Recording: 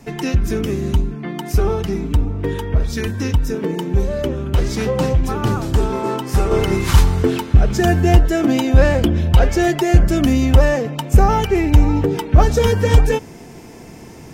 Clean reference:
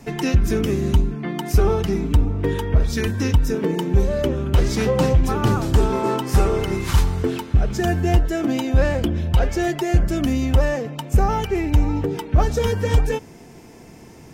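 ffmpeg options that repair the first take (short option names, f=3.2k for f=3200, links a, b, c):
-af "asetnsamples=n=441:p=0,asendcmd='6.51 volume volume -5.5dB',volume=0dB"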